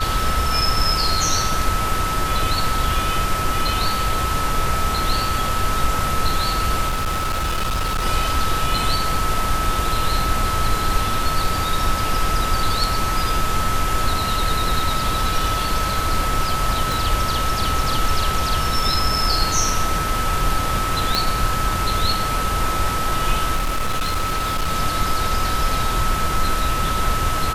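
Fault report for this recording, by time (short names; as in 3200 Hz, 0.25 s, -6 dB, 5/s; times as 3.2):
tone 1300 Hz -23 dBFS
6.88–8.06 clipped -18 dBFS
16.92 pop
21.15 pop -3 dBFS
23.55–24.72 clipped -17 dBFS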